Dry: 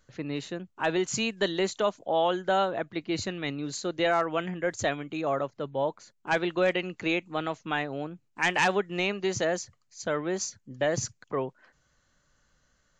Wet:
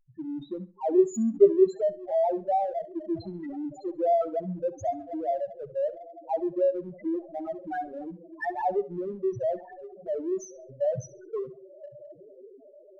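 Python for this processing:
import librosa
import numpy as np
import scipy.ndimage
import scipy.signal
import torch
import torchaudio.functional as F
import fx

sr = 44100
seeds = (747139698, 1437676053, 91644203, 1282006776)

p1 = x + fx.echo_diffused(x, sr, ms=1097, feedback_pct=57, wet_db=-11.5, dry=0)
p2 = fx.dynamic_eq(p1, sr, hz=710.0, q=7.8, threshold_db=-43.0, ratio=4.0, max_db=5)
p3 = fx.spec_topn(p2, sr, count=2)
p4 = fx.small_body(p3, sr, hz=(280.0, 400.0, 1500.0, 2800.0), ring_ms=90, db=16, at=(0.41, 1.63), fade=0.02)
p5 = fx.backlash(p4, sr, play_db=-34.5)
p6 = p4 + (p5 * 10.0 ** (-9.0 / 20.0))
y = fx.echo_feedback(p6, sr, ms=67, feedback_pct=27, wet_db=-17.0)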